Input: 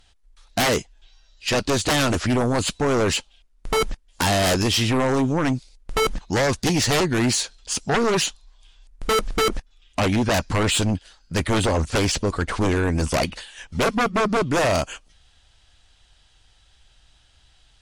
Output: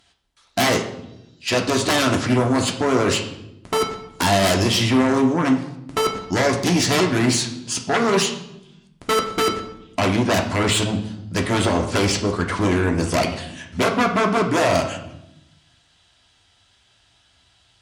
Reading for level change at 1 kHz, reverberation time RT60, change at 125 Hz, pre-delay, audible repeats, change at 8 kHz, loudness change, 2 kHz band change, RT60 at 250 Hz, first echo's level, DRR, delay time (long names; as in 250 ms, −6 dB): +2.5 dB, 0.90 s, +0.5 dB, 3 ms, no echo audible, +0.5 dB, +2.0 dB, +2.0 dB, 1.4 s, no echo audible, 1.5 dB, no echo audible